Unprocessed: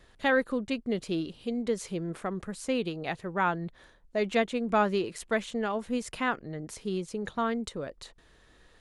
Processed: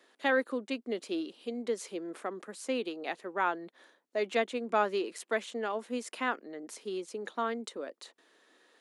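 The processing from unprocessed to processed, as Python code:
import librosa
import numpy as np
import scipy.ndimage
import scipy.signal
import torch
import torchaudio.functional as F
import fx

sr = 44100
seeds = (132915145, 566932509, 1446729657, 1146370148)

y = scipy.signal.sosfilt(scipy.signal.butter(6, 250.0, 'highpass', fs=sr, output='sos'), x)
y = y * librosa.db_to_amplitude(-2.5)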